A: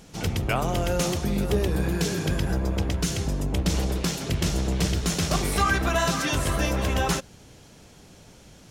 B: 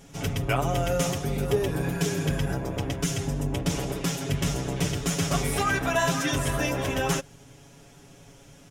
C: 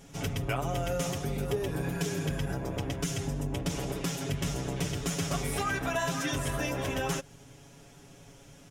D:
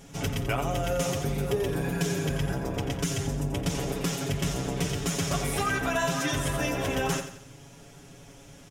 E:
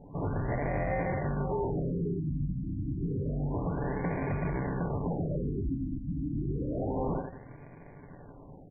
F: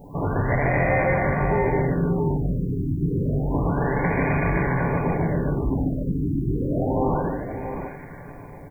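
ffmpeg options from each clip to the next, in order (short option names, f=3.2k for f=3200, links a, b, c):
-af "equalizer=f=4.3k:w=4.9:g=-8,aecho=1:1:7.2:0.87,volume=-3dB"
-af "acompressor=threshold=-28dB:ratio=2,volume=-2dB"
-af "aecho=1:1:88|176|264|352:0.316|0.13|0.0532|0.0218,volume=3dB"
-af "acrusher=samples=34:mix=1:aa=0.000001,volume=27dB,asoftclip=hard,volume=-27dB,afftfilt=real='re*lt(b*sr/1024,300*pow(2600/300,0.5+0.5*sin(2*PI*0.29*pts/sr)))':imag='im*lt(b*sr/1024,300*pow(2600/300,0.5+0.5*sin(2*PI*0.29*pts/sr)))':win_size=1024:overlap=0.75"
-filter_complex "[0:a]crystalizer=i=7:c=0,asplit=2[a][b];[b]aecho=0:1:146|669:0.668|0.447[c];[a][c]amix=inputs=2:normalize=0,volume=6.5dB"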